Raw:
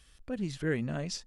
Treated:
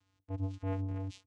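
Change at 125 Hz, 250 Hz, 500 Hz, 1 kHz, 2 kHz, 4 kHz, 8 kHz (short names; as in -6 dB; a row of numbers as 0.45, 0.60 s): +0.5 dB, -7.0 dB, -9.5 dB, -0.5 dB, -18.0 dB, under -15 dB, under -15 dB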